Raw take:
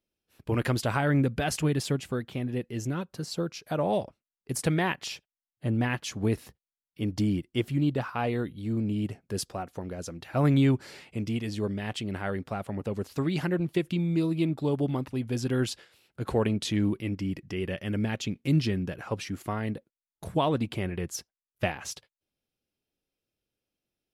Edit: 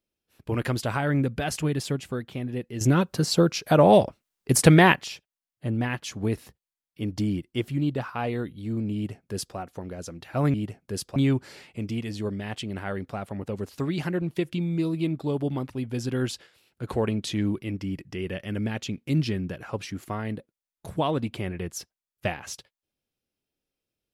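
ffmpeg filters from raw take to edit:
ffmpeg -i in.wav -filter_complex "[0:a]asplit=5[link_01][link_02][link_03][link_04][link_05];[link_01]atrim=end=2.812[link_06];[link_02]atrim=start=2.808:end=5.012,asetpts=PTS-STARTPTS,volume=11dB[link_07];[link_03]atrim=start=5.008:end=10.542[link_08];[link_04]atrim=start=8.948:end=9.572[link_09];[link_05]atrim=start=10.538[link_10];[link_06][link_07]acrossfade=duration=0.004:curve1=hsin:curve2=hsin[link_11];[link_11][link_08]acrossfade=duration=0.004:curve1=hsin:curve2=hsin[link_12];[link_12][link_09]acrossfade=duration=0.004:curve1=hsin:curve2=hsin[link_13];[link_13][link_10]acrossfade=duration=0.004:curve1=hsin:curve2=hsin" out.wav

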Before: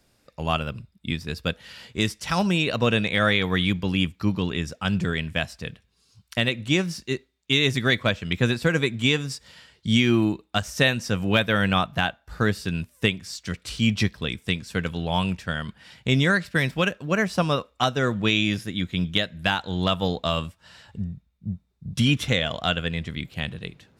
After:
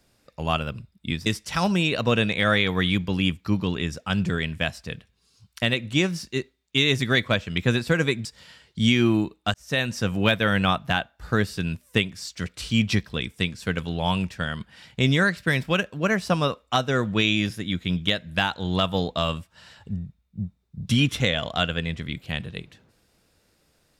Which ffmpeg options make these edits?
ffmpeg -i in.wav -filter_complex "[0:a]asplit=4[link_01][link_02][link_03][link_04];[link_01]atrim=end=1.262[link_05];[link_02]atrim=start=2.008:end=9.002[link_06];[link_03]atrim=start=9.328:end=10.62,asetpts=PTS-STARTPTS,afade=type=out:start_time=1.288:duration=0.004:curve=hsin[link_07];[link_04]atrim=start=10.62,asetpts=PTS-STARTPTS,afade=type=in:duration=0.38[link_08];[link_05][link_06]acrossfade=duration=0.004:curve1=hsin:curve2=hsin[link_09];[link_07][link_08]concat=n=2:v=0:a=1[link_10];[link_09][link_10]acrossfade=duration=0.004:curve1=hsin:curve2=hsin" out.wav

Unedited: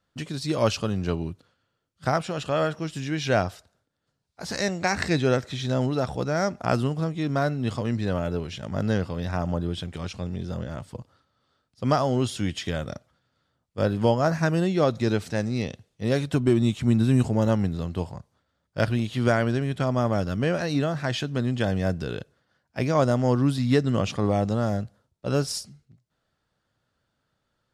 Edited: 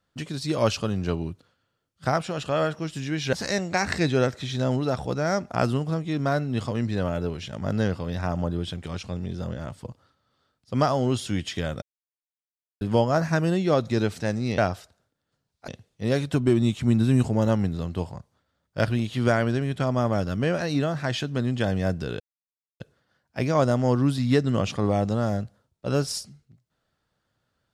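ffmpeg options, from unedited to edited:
ffmpeg -i in.wav -filter_complex "[0:a]asplit=7[link_01][link_02][link_03][link_04][link_05][link_06][link_07];[link_01]atrim=end=3.332[link_08];[link_02]atrim=start=4.428:end=12.92,asetpts=PTS-STARTPTS,afade=type=out:start_time=8.488:duration=0.004:curve=hsin[link_09];[link_03]atrim=start=12.92:end=13.91,asetpts=PTS-STARTPTS,volume=0[link_10];[link_04]atrim=start=13.91:end=15.682,asetpts=PTS-STARTPTS,afade=type=in:duration=0.004:curve=hsin[link_11];[link_05]atrim=start=3.328:end=4.432[link_12];[link_06]atrim=start=15.678:end=22.2,asetpts=PTS-STARTPTS,afade=type=out:start_time=6.518:duration=0.004:curve=hsin,apad=pad_dur=0.6[link_13];[link_07]atrim=start=22.2,asetpts=PTS-STARTPTS,afade=type=in:duration=0.004:curve=hsin[link_14];[link_09][link_10][link_11]concat=n=3:v=0:a=1[link_15];[link_08][link_15]acrossfade=duration=0.004:curve1=hsin:curve2=hsin[link_16];[link_16][link_12]acrossfade=duration=0.004:curve1=hsin:curve2=hsin[link_17];[link_13][link_14]concat=n=2:v=0:a=1[link_18];[link_17][link_18]acrossfade=duration=0.004:curve1=hsin:curve2=hsin" out.wav

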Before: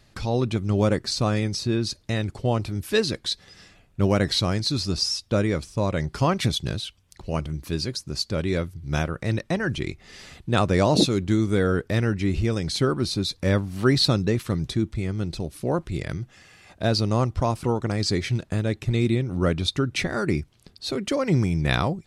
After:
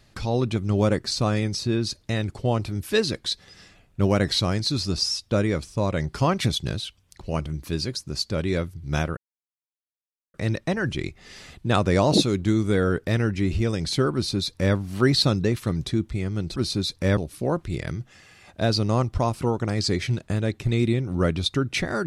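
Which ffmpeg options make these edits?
ffmpeg -i in.wav -filter_complex "[0:a]asplit=4[link_01][link_02][link_03][link_04];[link_01]atrim=end=9.17,asetpts=PTS-STARTPTS,afade=type=out:start_time=9.166:duration=0.004:curve=hsin,apad=pad_dur=1.17[link_05];[link_02]atrim=start=9.17:end=15.392,asetpts=PTS-STARTPTS,afade=type=in:duration=0.004:curve=hsin[link_06];[link_03]atrim=start=12.968:end=13.582[link_07];[link_04]atrim=start=15.388[link_08];[link_05][link_06]concat=n=2:v=0:a=1[link_09];[link_09][link_07]acrossfade=duration=0.004:curve1=hsin:curve2=hsin[link_10];[link_10][link_08]acrossfade=duration=0.004:curve1=hsin:curve2=hsin" out.wav

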